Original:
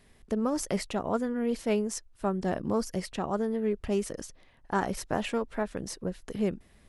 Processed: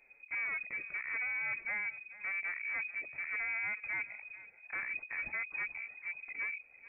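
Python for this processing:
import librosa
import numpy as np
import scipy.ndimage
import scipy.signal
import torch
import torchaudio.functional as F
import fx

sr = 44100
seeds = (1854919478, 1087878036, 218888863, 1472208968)

p1 = fx.env_flanger(x, sr, rest_ms=8.2, full_db=-26.5)
p2 = fx.hpss(p1, sr, part='percussive', gain_db=-11)
p3 = np.clip(p2, -10.0 ** (-35.0 / 20.0), 10.0 ** (-35.0 / 20.0))
p4 = p3 + fx.echo_feedback(p3, sr, ms=438, feedback_pct=18, wet_db=-17.5, dry=0)
y = fx.freq_invert(p4, sr, carrier_hz=2500)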